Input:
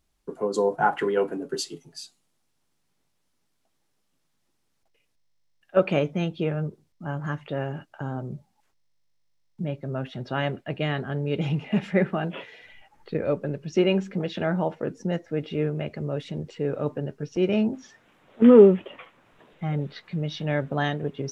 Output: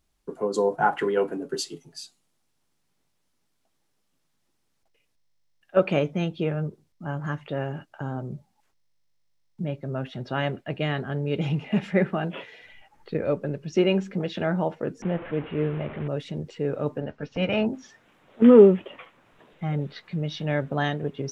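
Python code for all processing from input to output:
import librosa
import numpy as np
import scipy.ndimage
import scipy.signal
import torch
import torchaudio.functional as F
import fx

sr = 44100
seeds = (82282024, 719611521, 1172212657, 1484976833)

y = fx.chain(x, sr, fx.delta_mod(bps=16000, step_db=-31.5),
    fx.lowpass(hz=2000.0, slope=6), at=(15.02, 16.08))
y = fx.spec_clip(y, sr, under_db=14, at=(17.0, 17.65), fade=0.02)
y = fx.lowpass(y, sr, hz=3200.0, slope=12, at=(17.0, 17.65), fade=0.02)
y = fx.peak_eq(y, sr, hz=360.0, db=-14.5, octaves=0.23, at=(17.0, 17.65), fade=0.02)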